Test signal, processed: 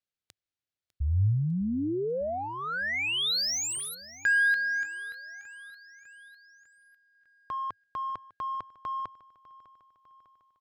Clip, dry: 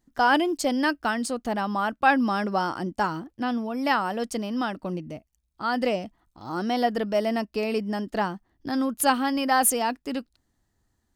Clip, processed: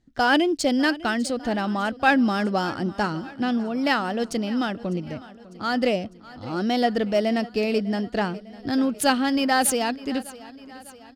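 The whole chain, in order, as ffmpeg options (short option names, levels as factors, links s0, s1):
-af "adynamicsmooth=sensitivity=7.5:basefreq=5800,equalizer=f=100:t=o:w=0.67:g=7,equalizer=f=1000:t=o:w=0.67:g=-8,equalizer=f=4000:t=o:w=0.67:g=3,aecho=1:1:601|1202|1803|2404|3005:0.112|0.064|0.0365|0.0208|0.0118,volume=1.5"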